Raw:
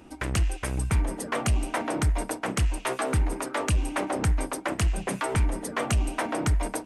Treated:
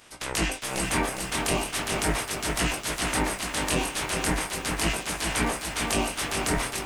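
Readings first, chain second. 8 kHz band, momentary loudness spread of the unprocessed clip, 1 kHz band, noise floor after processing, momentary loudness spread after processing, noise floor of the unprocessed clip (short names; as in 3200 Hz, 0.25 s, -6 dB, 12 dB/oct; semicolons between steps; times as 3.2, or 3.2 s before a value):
+6.5 dB, 3 LU, +1.5 dB, -38 dBFS, 2 LU, -43 dBFS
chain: spectral limiter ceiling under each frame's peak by 29 dB; chorus 0.38 Hz, delay 16.5 ms, depth 7.1 ms; lo-fi delay 0.408 s, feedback 55%, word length 8-bit, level -5 dB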